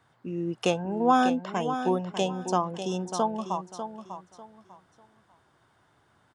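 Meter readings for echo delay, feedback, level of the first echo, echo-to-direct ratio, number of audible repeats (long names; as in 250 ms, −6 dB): 596 ms, 26%, −9.5 dB, −9.0 dB, 3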